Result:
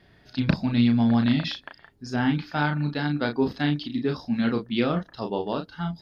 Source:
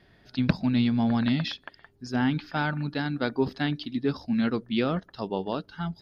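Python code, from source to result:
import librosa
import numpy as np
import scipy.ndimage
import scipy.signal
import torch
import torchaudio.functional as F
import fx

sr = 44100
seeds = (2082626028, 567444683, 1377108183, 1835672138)

y = fx.doubler(x, sr, ms=34.0, db=-5.5)
y = F.gain(torch.from_numpy(y), 1.0).numpy()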